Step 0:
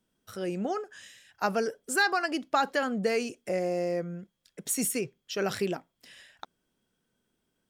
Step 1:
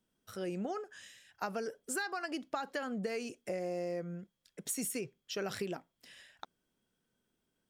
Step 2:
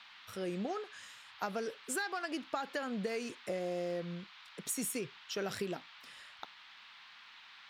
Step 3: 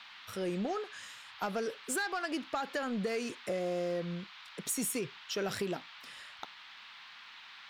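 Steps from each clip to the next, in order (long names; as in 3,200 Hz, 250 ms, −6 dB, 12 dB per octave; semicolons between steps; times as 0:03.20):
downward compressor 12 to 1, threshold −29 dBFS, peak gain reduction 10 dB; level −4 dB
noise in a band 910–4,000 Hz −56 dBFS
soft clipping −29 dBFS, distortion −20 dB; level +4 dB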